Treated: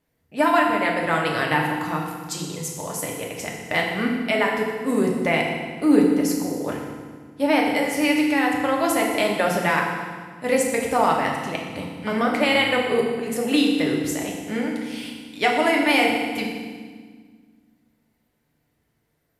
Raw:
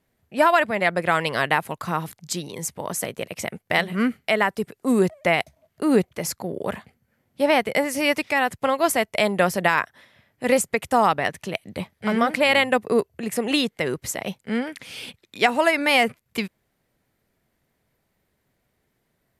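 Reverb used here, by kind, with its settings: FDN reverb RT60 1.6 s, low-frequency decay 1.55×, high-frequency decay 0.9×, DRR -1.5 dB; gain -4 dB

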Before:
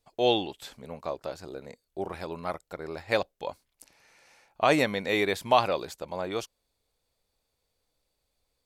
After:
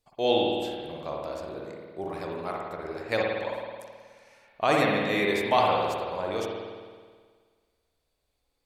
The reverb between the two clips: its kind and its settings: spring tank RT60 1.7 s, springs 53 ms, chirp 35 ms, DRR -2 dB; gain -2.5 dB

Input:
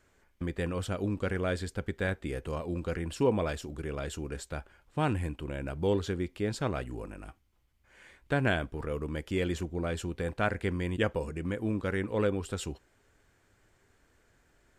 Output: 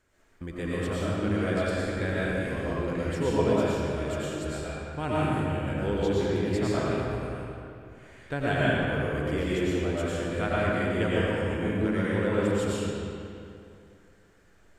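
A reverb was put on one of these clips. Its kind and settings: digital reverb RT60 2.6 s, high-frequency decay 0.75×, pre-delay 70 ms, DRR -8.5 dB; gain -4 dB

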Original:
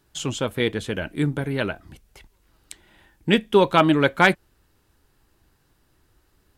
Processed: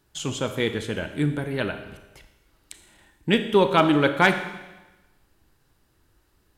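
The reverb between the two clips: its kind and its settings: Schroeder reverb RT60 1.1 s, combs from 27 ms, DRR 8 dB; gain -2 dB

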